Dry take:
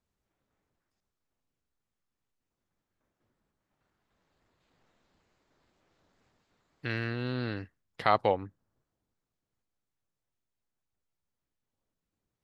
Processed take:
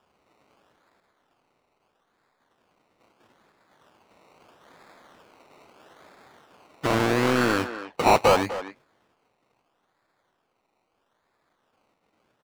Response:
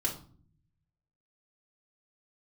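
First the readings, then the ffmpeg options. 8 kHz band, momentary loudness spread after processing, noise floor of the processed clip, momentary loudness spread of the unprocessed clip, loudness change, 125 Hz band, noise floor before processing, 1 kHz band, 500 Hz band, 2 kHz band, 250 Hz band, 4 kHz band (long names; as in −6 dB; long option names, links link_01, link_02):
can't be measured, 13 LU, −74 dBFS, 16 LU, +8.5 dB, +5.0 dB, below −85 dBFS, +8.5 dB, +10.0 dB, +9.5 dB, +11.5 dB, +11.0 dB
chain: -filter_complex "[0:a]acrusher=samples=21:mix=1:aa=0.000001:lfo=1:lforange=12.6:lforate=0.77,asplit=2[link_01][link_02];[link_02]highpass=frequency=720:poles=1,volume=30dB,asoftclip=type=tanh:threshold=-8dB[link_03];[link_01][link_03]amix=inputs=2:normalize=0,lowpass=frequency=3200:poles=1,volume=-6dB,asplit=2[link_04][link_05];[link_05]adelay=250,highpass=300,lowpass=3400,asoftclip=type=hard:threshold=-16.5dB,volume=-10dB[link_06];[link_04][link_06]amix=inputs=2:normalize=0"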